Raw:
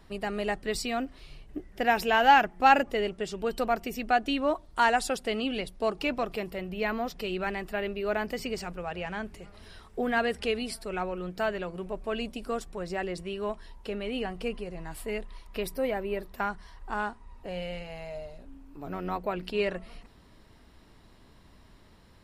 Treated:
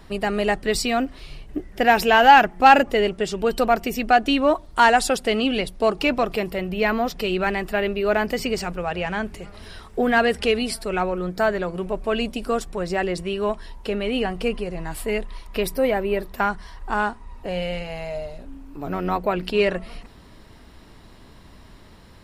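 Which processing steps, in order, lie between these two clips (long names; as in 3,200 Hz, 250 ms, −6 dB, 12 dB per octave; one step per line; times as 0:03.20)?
0:11.10–0:11.69: parametric band 2,800 Hz −10 dB 0.31 octaves
in parallel at −3 dB: soft clipping −18 dBFS, distortion −13 dB
on the sum: level +4.5 dB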